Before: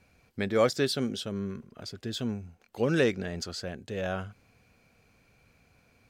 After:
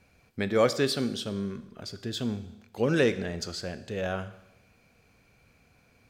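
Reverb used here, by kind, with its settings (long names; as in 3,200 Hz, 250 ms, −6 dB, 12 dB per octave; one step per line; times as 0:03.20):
four-comb reverb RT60 0.93 s, combs from 26 ms, DRR 12.5 dB
level +1 dB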